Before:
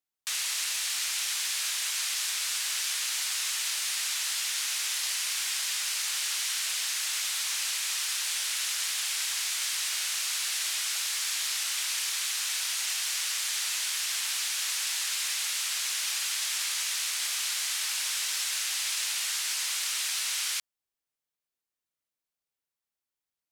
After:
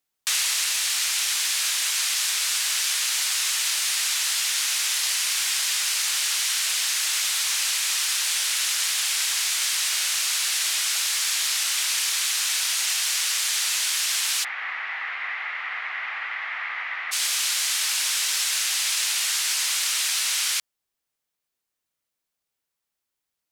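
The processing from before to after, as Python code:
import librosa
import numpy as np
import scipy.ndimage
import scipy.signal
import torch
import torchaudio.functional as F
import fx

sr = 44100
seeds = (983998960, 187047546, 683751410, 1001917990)

y = fx.rider(x, sr, range_db=3, speed_s=0.5)
y = fx.cabinet(y, sr, low_hz=200.0, low_slope=12, high_hz=2100.0, hz=(210.0, 370.0, 540.0, 770.0, 1200.0, 2000.0), db=(5, -3, -3, 7, 5, 9), at=(14.43, 17.11), fade=0.02)
y = y * librosa.db_to_amplitude(6.5)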